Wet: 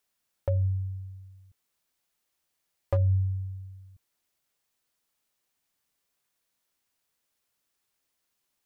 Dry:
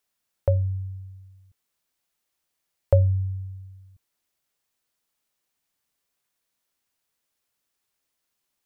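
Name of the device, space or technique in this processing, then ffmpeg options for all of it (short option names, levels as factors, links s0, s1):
clipper into limiter: -af "asoftclip=type=hard:threshold=0.266,alimiter=limit=0.119:level=0:latency=1:release=161"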